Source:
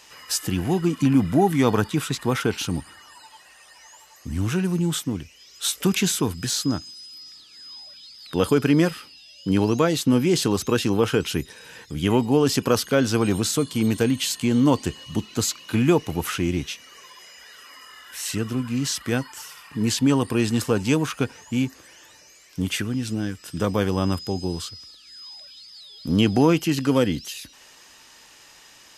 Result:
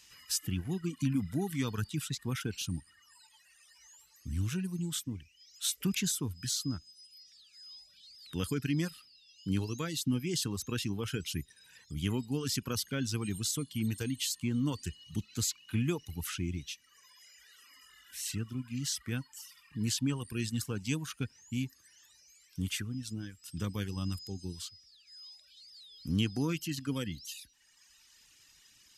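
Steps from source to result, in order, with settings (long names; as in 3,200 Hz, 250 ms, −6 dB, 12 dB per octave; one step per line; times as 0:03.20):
reverb reduction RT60 1.3 s
guitar amp tone stack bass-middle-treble 6-0-2
level +7.5 dB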